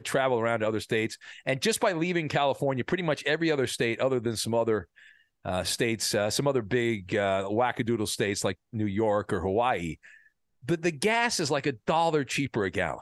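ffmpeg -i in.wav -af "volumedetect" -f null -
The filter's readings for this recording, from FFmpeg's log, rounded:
mean_volume: -27.9 dB
max_volume: -10.9 dB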